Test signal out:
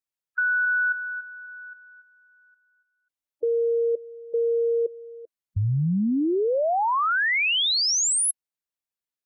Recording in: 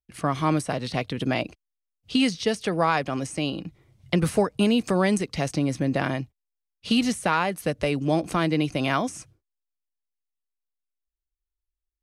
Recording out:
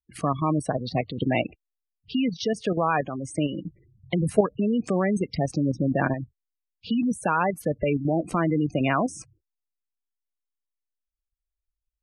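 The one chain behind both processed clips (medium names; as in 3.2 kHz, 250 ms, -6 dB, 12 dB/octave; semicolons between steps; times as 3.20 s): spectral gate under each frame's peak -15 dB strong; level held to a coarse grid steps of 9 dB; trim +4.5 dB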